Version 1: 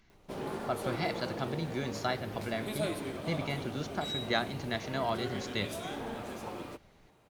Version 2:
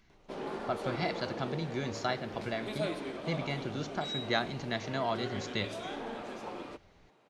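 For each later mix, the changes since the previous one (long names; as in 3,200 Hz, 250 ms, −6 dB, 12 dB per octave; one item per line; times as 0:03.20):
background: add band-pass filter 210–5,700 Hz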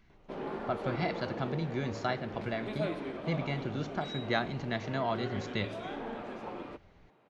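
speech: add high-shelf EQ 6,300 Hz +9 dB
master: add bass and treble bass +3 dB, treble −13 dB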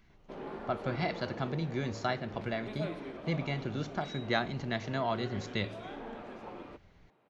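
speech: add high-shelf EQ 6,400 Hz +5 dB
background −4.0 dB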